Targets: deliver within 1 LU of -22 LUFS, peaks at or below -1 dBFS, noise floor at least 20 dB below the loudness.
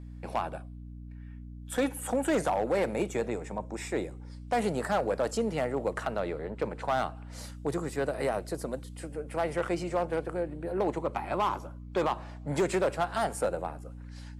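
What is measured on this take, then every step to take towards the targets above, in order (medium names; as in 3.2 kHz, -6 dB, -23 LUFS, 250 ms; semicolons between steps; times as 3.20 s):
clipped samples 0.9%; clipping level -21.0 dBFS; hum 60 Hz; highest harmonic 300 Hz; hum level -41 dBFS; loudness -31.5 LUFS; peak level -21.0 dBFS; loudness target -22.0 LUFS
-> clip repair -21 dBFS; hum notches 60/120/180/240/300 Hz; trim +9.5 dB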